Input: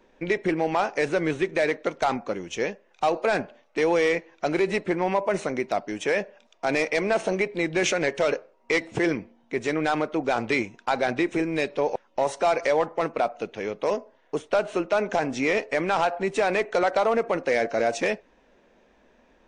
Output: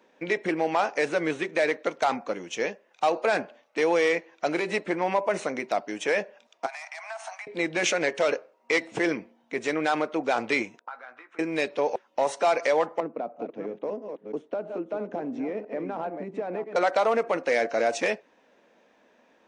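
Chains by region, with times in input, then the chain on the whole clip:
6.66–7.47 s: steep high-pass 680 Hz 96 dB/octave + compression 10:1, threshold -31 dBFS + peaking EQ 3.1 kHz -7 dB 1.2 oct
10.79–11.39 s: compression 2:1, threshold -32 dBFS + auto-wah 480–1300 Hz, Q 4.1, up, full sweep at -34.5 dBFS + doubling 16 ms -8 dB
13.00–16.76 s: chunks repeated in reverse 331 ms, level -8.5 dB + band-pass filter 240 Hz, Q 1.1 + three bands compressed up and down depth 70%
whole clip: Bessel high-pass 260 Hz, order 2; band-stop 380 Hz, Q 12

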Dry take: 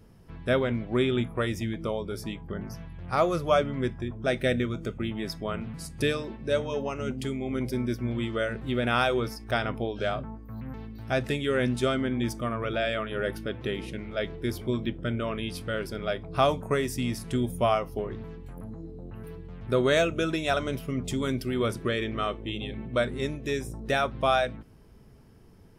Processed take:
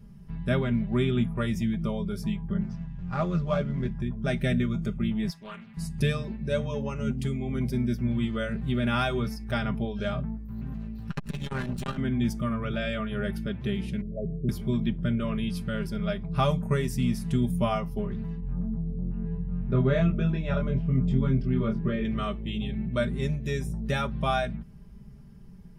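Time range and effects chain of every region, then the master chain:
2.63–3.95 s: CVSD coder 64 kbps + Gaussian low-pass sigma 1.6 samples + AM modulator 89 Hz, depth 40%
5.30–5.77 s: high-pass 1.5 kHz 6 dB/octave + loudspeaker Doppler distortion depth 0.26 ms
10.48–11.98 s: comb filter that takes the minimum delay 0.71 ms + transformer saturation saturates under 660 Hz
14.01–14.49 s: Chebyshev low-pass 730 Hz, order 10 + comb 7.2 ms, depth 36%
18.40–22.05 s: tape spacing loss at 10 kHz 34 dB + doubling 23 ms -3 dB
whole clip: resonant low shelf 240 Hz +10 dB, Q 1.5; band-stop 710 Hz, Q 16; comb 5 ms; trim -4.5 dB

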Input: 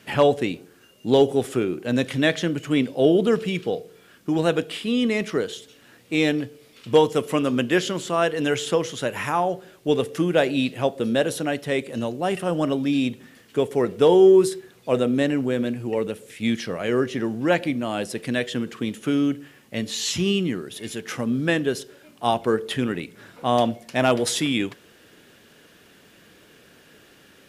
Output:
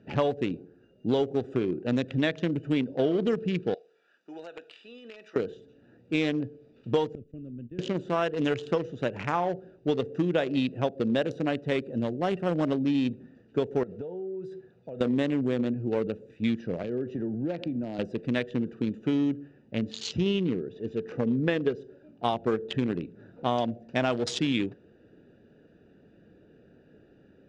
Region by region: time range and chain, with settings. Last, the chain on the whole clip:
3.74–5.36 s: high-pass 990 Hz + treble shelf 2.1 kHz +6.5 dB + compression 5:1, threshold -29 dBFS
7.15–7.79 s: gate -28 dBFS, range -20 dB + amplifier tone stack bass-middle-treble 10-0-1 + level flattener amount 50%
13.83–15.01 s: high-pass 110 Hz 6 dB/octave + peaking EQ 310 Hz -7 dB 0.84 oct + compression 20:1, threshold -30 dBFS
16.83–17.99 s: compression 10:1, threshold -24 dBFS + three bands expanded up and down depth 70%
20.07–21.80 s: low-pass 5.8 kHz + peaking EQ 460 Hz +9 dB 0.25 oct
whole clip: local Wiener filter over 41 samples; compression 6:1, threshold -22 dBFS; low-pass 6.3 kHz 24 dB/octave

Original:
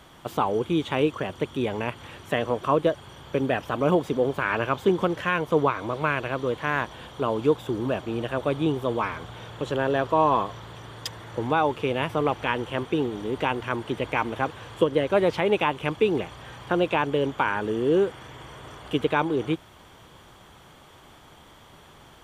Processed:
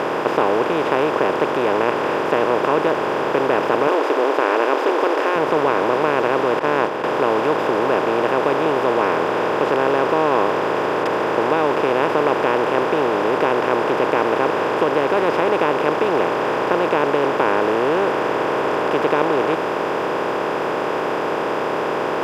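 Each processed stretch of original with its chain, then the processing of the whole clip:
3.87–5.36 s: brick-wall FIR high-pass 270 Hz + dynamic bell 5.3 kHz, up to +6 dB, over -49 dBFS, Q 1.2
6.59–7.04 s: expander -30 dBFS + treble shelf 8 kHz -9 dB
whole clip: spectral levelling over time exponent 0.2; high-pass 260 Hz 6 dB/octave; treble shelf 3 kHz -9 dB; trim -2.5 dB

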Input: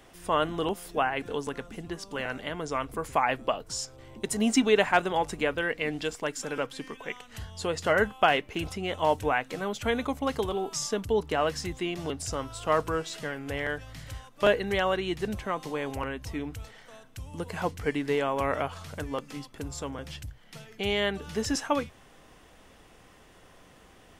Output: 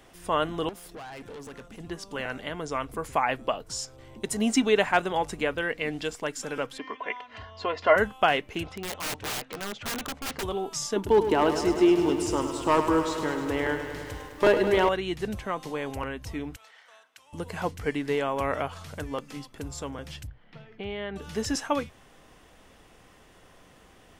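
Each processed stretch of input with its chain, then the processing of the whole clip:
0.69–1.80 s: compression, threshold -28 dBFS + valve stage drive 38 dB, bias 0.5
6.78–7.96 s: cabinet simulation 120–4200 Hz, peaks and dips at 140 Hz -9 dB, 340 Hz -9 dB, 540 Hz +9 dB, 1 kHz +9 dB, 2 kHz +3 dB, 3.6 kHz -4 dB + comb 2.9 ms, depth 69%
8.63–10.43 s: low-pass 3.5 kHz + bass shelf 210 Hz -7.5 dB + integer overflow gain 27 dB
10.96–14.89 s: small resonant body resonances 340/900 Hz, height 14 dB, ringing for 35 ms + hard clipper -13.5 dBFS + bit-crushed delay 103 ms, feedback 80%, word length 9-bit, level -9.5 dB
16.56–17.33 s: high-pass 930 Hz + treble shelf 5.9 kHz -10 dB
20.27–21.16 s: compression 2:1, threshold -32 dBFS + distance through air 340 m
whole clip: none

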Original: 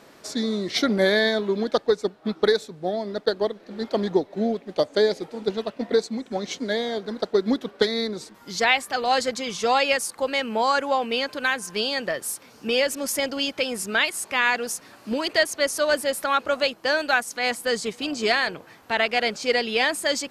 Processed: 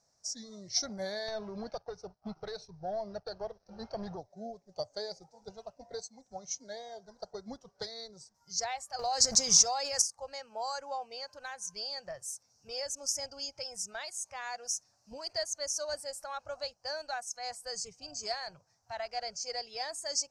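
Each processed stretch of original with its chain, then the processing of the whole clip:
1.28–4.20 s: compression, threshold -21 dBFS + waveshaping leveller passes 2 + Savitzky-Golay filter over 15 samples
8.99–10.02 s: companding laws mixed up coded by A + level flattener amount 100%
whole clip: spectral noise reduction 11 dB; FFT filter 110 Hz 0 dB, 330 Hz -23 dB, 730 Hz -5 dB, 1.1 kHz -14 dB, 1.6 kHz -15 dB, 3.2 kHz -22 dB, 5.7 kHz +10 dB, 12 kHz -16 dB; trim -5.5 dB

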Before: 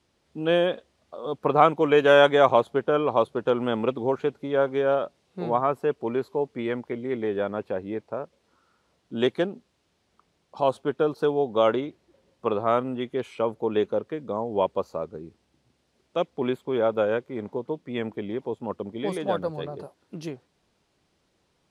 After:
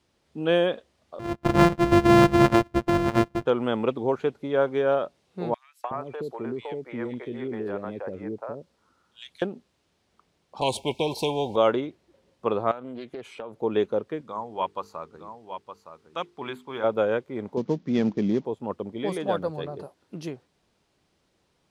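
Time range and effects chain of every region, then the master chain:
1.19–3.46 s: sorted samples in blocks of 128 samples + low-pass 1.4 kHz 6 dB/octave + bass shelf 150 Hz +7 dB
5.54–9.42 s: compression, threshold -24 dBFS + three bands offset in time highs, mids, lows 300/370 ms, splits 490/2400 Hz
10.61–11.56 s: Chebyshev band-stop 1–2.2 kHz, order 5 + comb 2.2 ms, depth 30% + spectrum-flattening compressor 2:1
12.71–13.62 s: high-pass 100 Hz + compression 10:1, threshold -32 dBFS + loudspeaker Doppler distortion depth 0.23 ms
14.21–16.84 s: resonant low shelf 750 Hz -8 dB, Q 1.5 + hum notches 50/100/150/200/250/300/350/400/450 Hz + delay 915 ms -9 dB
17.57–18.45 s: CVSD coder 32 kbps + peaking EQ 190 Hz +12.5 dB 1.4 oct
whole clip: none

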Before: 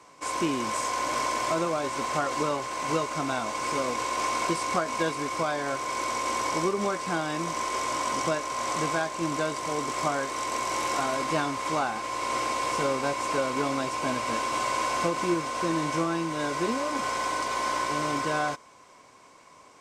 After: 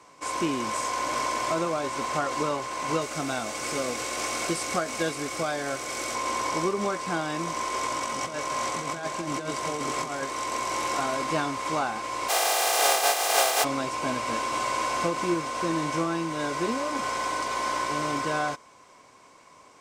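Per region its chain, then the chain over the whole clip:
3.01–6.15 s: treble shelf 7.4 kHz +8 dB + band-stop 1 kHz, Q 5.1
7.83–10.24 s: compressor with a negative ratio -30 dBFS, ratio -0.5 + delay 176 ms -8 dB
12.28–13.63 s: spectral contrast reduction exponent 0.27 + resonant high-pass 630 Hz, resonance Q 7.3 + comb 2.5 ms, depth 88%
whole clip: none

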